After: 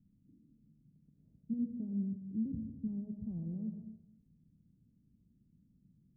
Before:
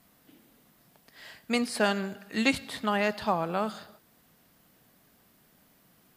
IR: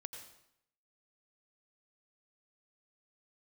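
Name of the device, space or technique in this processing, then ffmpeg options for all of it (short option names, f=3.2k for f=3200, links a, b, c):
club heard from the street: -filter_complex "[0:a]alimiter=limit=-21dB:level=0:latency=1:release=34,lowpass=f=220:w=0.5412,lowpass=f=220:w=1.3066[a];[1:a]atrim=start_sample=2205[b];[a][b]afir=irnorm=-1:irlink=0,volume=5.5dB"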